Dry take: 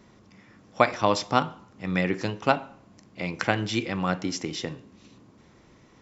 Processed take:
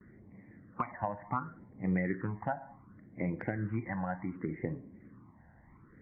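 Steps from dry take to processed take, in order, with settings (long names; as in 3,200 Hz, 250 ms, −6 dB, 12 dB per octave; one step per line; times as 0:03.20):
spectral magnitudes quantised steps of 15 dB
noise gate with hold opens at −48 dBFS
Butterworth low-pass 2,100 Hz 96 dB per octave
downward compressor 6 to 1, threshold −27 dBFS, peak gain reduction 13 dB
all-pass phaser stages 12, 0.68 Hz, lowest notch 380–1,400 Hz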